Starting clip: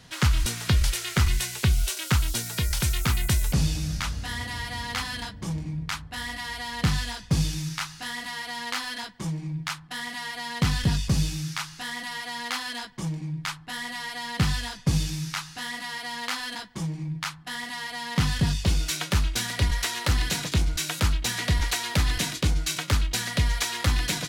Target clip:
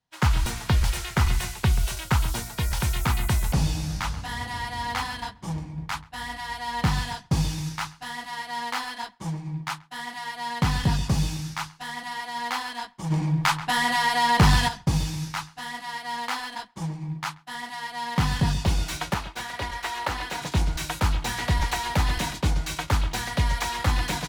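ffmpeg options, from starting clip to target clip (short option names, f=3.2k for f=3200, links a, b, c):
-filter_complex "[0:a]acrossover=split=580|2700[a][b][c];[c]asoftclip=type=tanh:threshold=-31.5dB[d];[a][b][d]amix=inputs=3:normalize=0,asettb=1/sr,asplit=3[e][f][g];[e]atrim=end=19.144[h];[f]atrim=start=19.14:end=20.42,asetpts=PTS-STARTPTS,afade=t=in:d=0.004:c=qsin,afade=t=out:st=1.276:d=0.004:c=qsin,bass=f=250:g=-13,treble=f=4k:g=-5[i];[g]atrim=start=20.416[j];[h][i]acrossfade=d=0.004:c1=hsin:c2=qsin[k];[k][j]acrossfade=d=0.004:c1=qsin:c2=hsin,asplit=2[l][m];[m]adelay=134,lowpass=f=3.5k:p=1,volume=-14dB,asplit=2[n][o];[o]adelay=134,lowpass=f=3.5k:p=1,volume=0.54,asplit=2[p][q];[q]adelay=134,lowpass=f=3.5k:p=1,volume=0.54,asplit=2[r][s];[s]adelay=134,lowpass=f=3.5k:p=1,volume=0.54,asplit=2[t][u];[u]adelay=134,lowpass=f=3.5k:p=1,volume=0.54[v];[n][p][r][t][v]amix=inputs=5:normalize=0[w];[l][w]amix=inputs=2:normalize=0,asplit=3[x][y][z];[x]afade=t=out:st=13.1:d=0.02[aa];[y]aeval=exprs='0.266*sin(PI/2*1.78*val(0)/0.266)':c=same,afade=t=in:st=13.1:d=0.02,afade=t=out:st=14.67:d=0.02[ab];[z]afade=t=in:st=14.67:d=0.02[ac];[aa][ab][ac]amix=inputs=3:normalize=0,equalizer=f=860:w=2:g=9,agate=range=-33dB:threshold=-28dB:ratio=3:detection=peak"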